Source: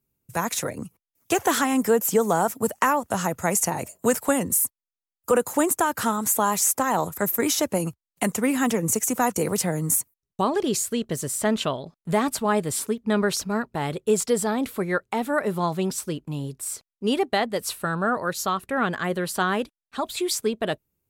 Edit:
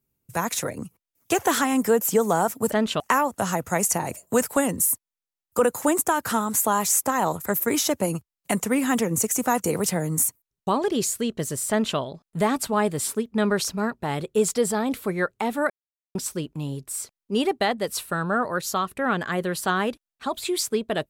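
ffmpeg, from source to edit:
ffmpeg -i in.wav -filter_complex "[0:a]asplit=5[link_01][link_02][link_03][link_04][link_05];[link_01]atrim=end=2.722[link_06];[link_02]atrim=start=11.418:end=11.702[link_07];[link_03]atrim=start=2.718:end=15.42,asetpts=PTS-STARTPTS,afade=type=out:start_time=12.698:duration=0.004:curve=hsin[link_08];[link_04]atrim=start=15.42:end=15.87,asetpts=PTS-STARTPTS,volume=0[link_09];[link_05]atrim=start=15.87,asetpts=PTS-STARTPTS,afade=type=in:duration=0.004:curve=hsin[link_10];[link_06][link_07]acrossfade=duration=0.004:curve1=hsin:curve2=hsin[link_11];[link_08][link_09][link_10]concat=n=3:v=0:a=1[link_12];[link_11][link_12]acrossfade=duration=0.004:curve1=hsin:curve2=hsin" out.wav

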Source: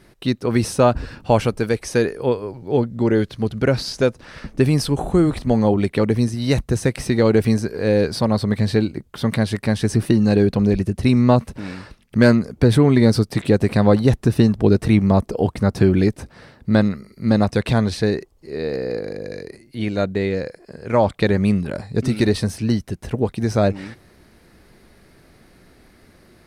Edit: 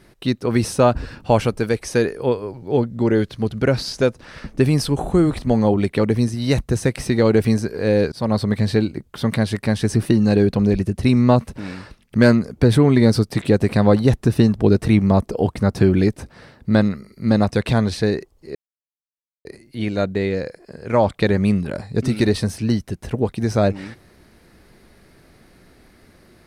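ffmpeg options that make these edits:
ffmpeg -i in.wav -filter_complex "[0:a]asplit=4[link_01][link_02][link_03][link_04];[link_01]atrim=end=8.12,asetpts=PTS-STARTPTS,afade=type=out:start_time=8.116:duration=0.004:curve=hsin[link_05];[link_02]atrim=start=8.12:end=18.55,asetpts=PTS-STARTPTS,afade=type=in:duration=0.25:curve=qsin,afade=type=out:start_time=10.426:duration=0.004:curve=hsin[link_06];[link_03]atrim=start=18.55:end=19.45,asetpts=PTS-STARTPTS,volume=0[link_07];[link_04]atrim=start=19.45,asetpts=PTS-STARTPTS,afade=type=in:duration=0.004:curve=hsin[link_08];[link_05][link_06][link_07][link_08]concat=n=4:v=0:a=1" out.wav

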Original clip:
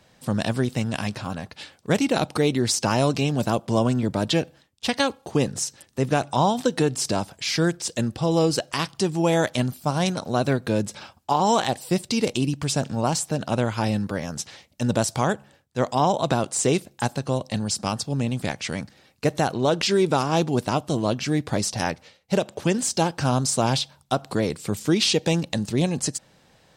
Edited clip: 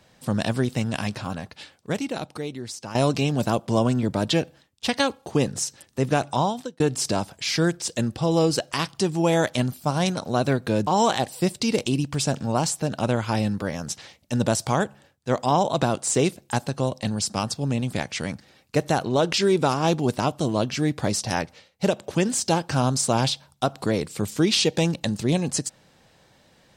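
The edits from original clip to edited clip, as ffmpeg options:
ffmpeg -i in.wav -filter_complex "[0:a]asplit=4[link_01][link_02][link_03][link_04];[link_01]atrim=end=2.95,asetpts=PTS-STARTPTS,afade=type=out:start_time=1.33:duration=1.62:curve=qua:silence=0.211349[link_05];[link_02]atrim=start=2.95:end=6.8,asetpts=PTS-STARTPTS,afade=type=in:duration=0.004:curve=hsin:silence=0.211349,afade=type=out:start_time=3.35:duration=0.5[link_06];[link_03]atrim=start=6.8:end=10.872,asetpts=PTS-STARTPTS,afade=type=in:duration=0.004:curve=hsin[link_07];[link_04]atrim=start=11.358[link_08];[link_05][link_06][link_07]concat=n=3:v=0:a=1[link_09];[link_09][link_08]acrossfade=duration=0.004:curve1=hsin:curve2=hsin" out.wav

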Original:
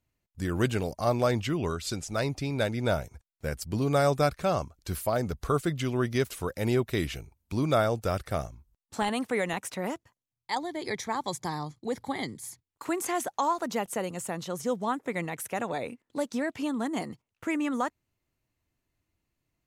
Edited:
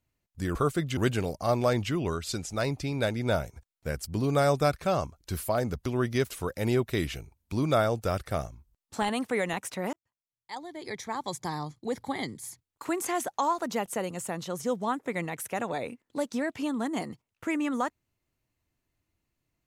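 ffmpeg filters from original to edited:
ffmpeg -i in.wav -filter_complex "[0:a]asplit=5[link_01][link_02][link_03][link_04][link_05];[link_01]atrim=end=0.552[link_06];[link_02]atrim=start=5.438:end=5.862[link_07];[link_03]atrim=start=0.548:end=5.442[link_08];[link_04]atrim=start=5.858:end=9.93,asetpts=PTS-STARTPTS,afade=type=out:start_time=4.068:duration=0.004:curve=hsin[link_09];[link_05]atrim=start=9.93,asetpts=PTS-STARTPTS,afade=type=in:duration=1.65[link_10];[link_06][link_07]acrossfade=duration=0.004:curve1=hsin:curve2=hsin[link_11];[link_11][link_08]acrossfade=duration=0.004:curve1=hsin:curve2=hsin[link_12];[link_09][link_10]concat=n=2:v=0:a=1[link_13];[link_12][link_13]acrossfade=duration=0.004:curve1=hsin:curve2=hsin" out.wav

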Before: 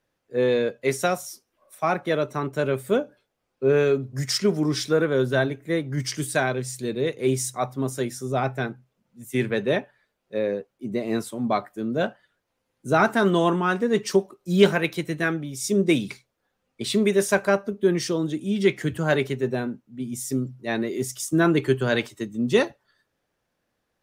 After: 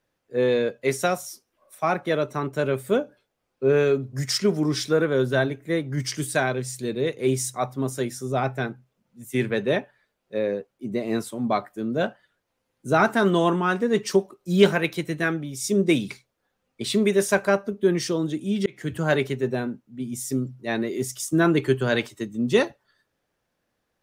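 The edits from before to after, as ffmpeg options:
ffmpeg -i in.wav -filter_complex "[0:a]asplit=2[link_01][link_02];[link_01]atrim=end=18.66,asetpts=PTS-STARTPTS,afade=type=out:start_time=18.656:duration=0.004:curve=hsin[link_03];[link_02]atrim=start=18.66,asetpts=PTS-STARTPTS,afade=type=in:duration=0.31[link_04];[link_03][link_04]concat=n=2:v=0:a=1" out.wav

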